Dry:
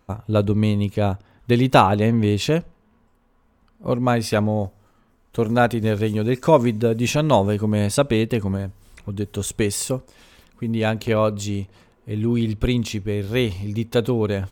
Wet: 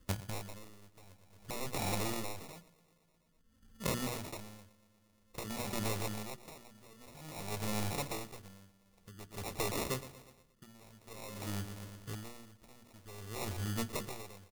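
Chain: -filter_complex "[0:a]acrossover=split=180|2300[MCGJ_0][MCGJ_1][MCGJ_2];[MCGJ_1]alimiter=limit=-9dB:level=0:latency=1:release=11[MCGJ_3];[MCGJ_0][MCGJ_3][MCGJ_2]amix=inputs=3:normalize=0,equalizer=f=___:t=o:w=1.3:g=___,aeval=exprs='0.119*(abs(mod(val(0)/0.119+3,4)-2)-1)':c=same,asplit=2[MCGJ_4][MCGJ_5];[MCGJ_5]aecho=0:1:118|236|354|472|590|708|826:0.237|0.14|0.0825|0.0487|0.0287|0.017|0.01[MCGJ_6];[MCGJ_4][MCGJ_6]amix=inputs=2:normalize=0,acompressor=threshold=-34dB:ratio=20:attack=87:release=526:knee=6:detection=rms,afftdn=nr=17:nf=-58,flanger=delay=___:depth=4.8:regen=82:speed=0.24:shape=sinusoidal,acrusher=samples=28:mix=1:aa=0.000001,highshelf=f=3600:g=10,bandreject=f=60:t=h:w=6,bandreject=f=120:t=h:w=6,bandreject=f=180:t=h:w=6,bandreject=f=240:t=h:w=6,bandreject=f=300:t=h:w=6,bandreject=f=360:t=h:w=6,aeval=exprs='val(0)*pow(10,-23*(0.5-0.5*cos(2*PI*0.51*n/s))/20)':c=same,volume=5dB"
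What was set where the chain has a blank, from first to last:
1300, -7, 0.9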